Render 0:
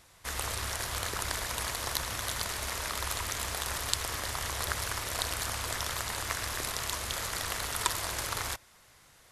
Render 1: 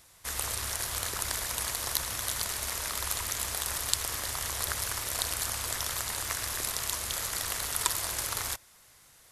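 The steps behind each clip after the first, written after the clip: treble shelf 5.8 kHz +9.5 dB; trim -2.5 dB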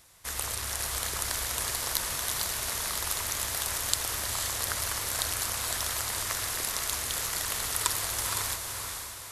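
echo that smears into a reverb 488 ms, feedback 46%, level -4.5 dB

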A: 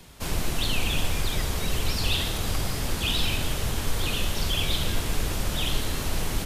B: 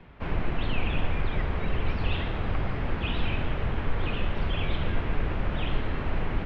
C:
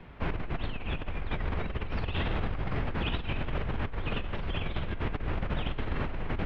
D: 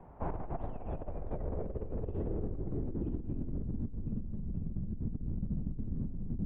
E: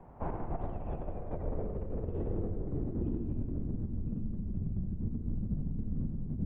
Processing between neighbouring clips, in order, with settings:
low-pass 2.4 kHz 24 dB/octave
compressor with a negative ratio -29 dBFS, ratio -1; trim -2 dB
low-pass sweep 820 Hz -> 210 Hz, 0.39–4.24 s; trim -5.5 dB
reverberation RT60 0.95 s, pre-delay 75 ms, DRR 5 dB

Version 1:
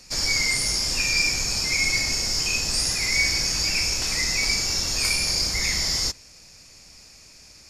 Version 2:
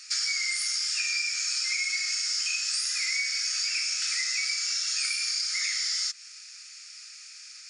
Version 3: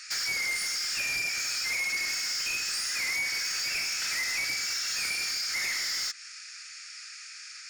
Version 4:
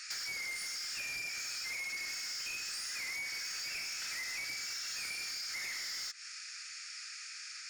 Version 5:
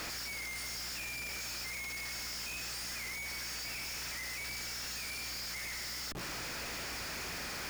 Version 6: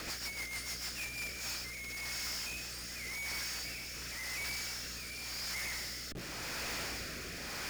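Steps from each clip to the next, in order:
FFT band-pass 1.2–10 kHz; compression 10:1, threshold -29 dBFS, peak gain reduction 12 dB; trim +3.5 dB
peaking EQ 1.6 kHz +10 dB 1.2 oct; saturation -27 dBFS, distortion -10 dB
compression, threshold -37 dBFS, peak gain reduction 8 dB; trim -2 dB
Schmitt trigger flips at -48 dBFS; hum 60 Hz, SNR 14 dB
rotary cabinet horn 6.7 Hz, later 0.9 Hz, at 0.83 s; trim +2.5 dB

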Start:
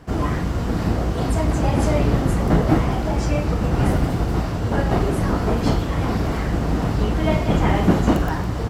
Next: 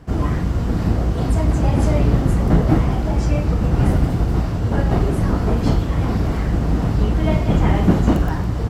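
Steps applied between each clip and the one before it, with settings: bass shelf 250 Hz +7 dB; trim -2.5 dB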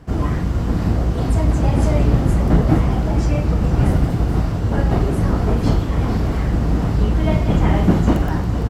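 delay 459 ms -12 dB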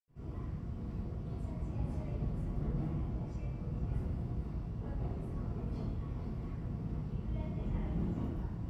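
reverberation RT60 0.95 s, pre-delay 78 ms

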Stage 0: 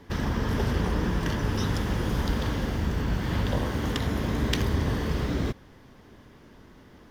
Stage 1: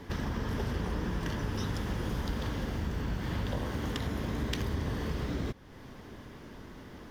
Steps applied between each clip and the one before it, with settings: compression 2:1, threshold -43 dBFS, peak gain reduction 12 dB; trim +4 dB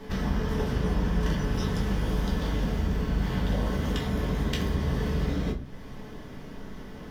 reverberation RT60 0.35 s, pre-delay 5 ms, DRR -1.5 dB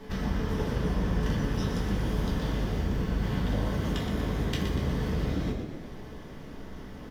frequency-shifting echo 120 ms, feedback 56%, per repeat +54 Hz, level -8 dB; trim -2.5 dB

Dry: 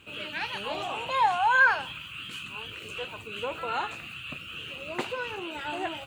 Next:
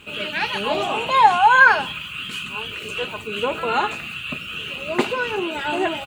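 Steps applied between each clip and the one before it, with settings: comb 4.8 ms, depth 36%; dynamic bell 290 Hz, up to +6 dB, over -44 dBFS, Q 0.97; trim +8.5 dB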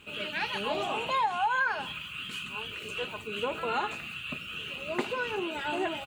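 compression 5:1, threshold -17 dBFS, peak gain reduction 9 dB; trim -8 dB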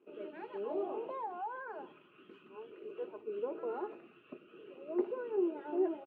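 in parallel at -3 dB: peak limiter -24.5 dBFS, peak gain reduction 8.5 dB; on the sum: crossover distortion -56 dBFS; ladder band-pass 400 Hz, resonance 65%; trim +1 dB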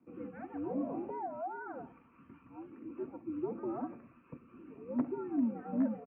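one-sided wavefolder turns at -24.5 dBFS; distance through air 68 m; mistuned SSB -110 Hz 180–2300 Hz; trim +1 dB

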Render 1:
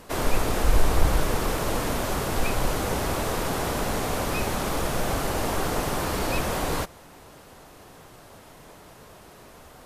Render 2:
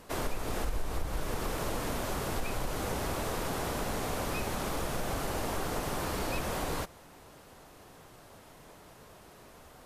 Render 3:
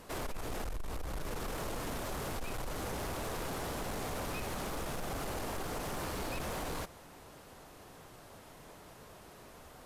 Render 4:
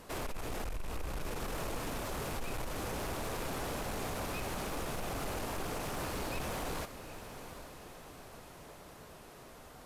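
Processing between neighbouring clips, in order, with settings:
compression 5:1, threshold -23 dBFS, peak gain reduction 11 dB; trim -5.5 dB
in parallel at -1 dB: peak limiter -28.5 dBFS, peak gain reduction 8.5 dB; on the sum: saturation -27.5 dBFS, distortion -13 dB; trim -5.5 dB
rattle on loud lows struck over -45 dBFS, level -41 dBFS; echo that smears into a reverb 798 ms, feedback 51%, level -11.5 dB

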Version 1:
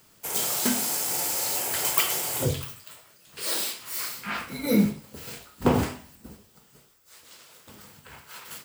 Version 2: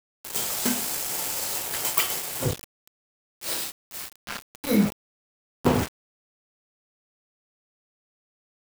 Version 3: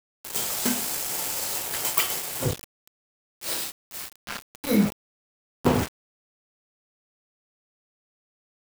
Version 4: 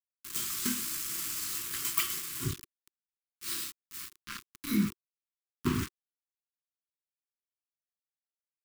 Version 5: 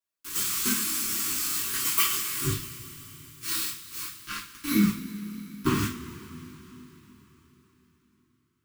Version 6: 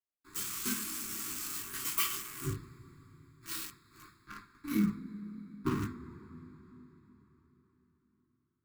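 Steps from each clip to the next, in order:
small samples zeroed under -26 dBFS
no audible change
elliptic band-stop 360–1100 Hz, stop band 70 dB; trim -6 dB
two-slope reverb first 0.3 s, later 4.3 s, from -21 dB, DRR -6.5 dB
local Wiener filter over 15 samples; trim -7 dB

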